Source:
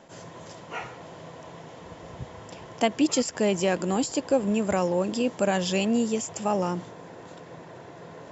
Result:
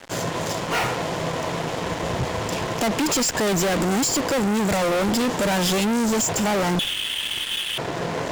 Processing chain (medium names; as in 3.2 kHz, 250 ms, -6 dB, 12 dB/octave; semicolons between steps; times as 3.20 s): 6.79–7.78 s: frequency inversion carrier 3.6 kHz; fuzz box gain 42 dB, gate -48 dBFS; trim -6.5 dB